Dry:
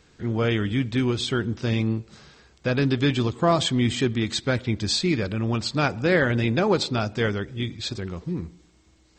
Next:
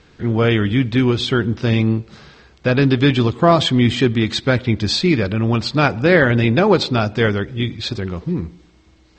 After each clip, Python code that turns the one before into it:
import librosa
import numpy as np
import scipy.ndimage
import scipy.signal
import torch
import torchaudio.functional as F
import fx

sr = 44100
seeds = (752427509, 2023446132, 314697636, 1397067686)

y = scipy.signal.sosfilt(scipy.signal.butter(2, 4600.0, 'lowpass', fs=sr, output='sos'), x)
y = y * 10.0 ** (7.5 / 20.0)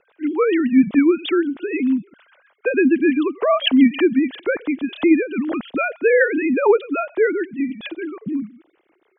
y = fx.sine_speech(x, sr)
y = fx.rotary(y, sr, hz=6.7)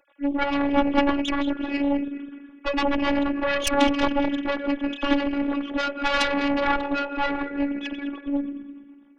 y = fx.reverse_delay_fb(x, sr, ms=104, feedback_pct=64, wet_db=-10.0)
y = fx.cheby_harmonics(y, sr, harmonics=(3, 4, 7, 8), levels_db=(-7, -12, -16, -26), full_scale_db=-3.0)
y = fx.robotise(y, sr, hz=283.0)
y = y * 10.0 ** (-3.5 / 20.0)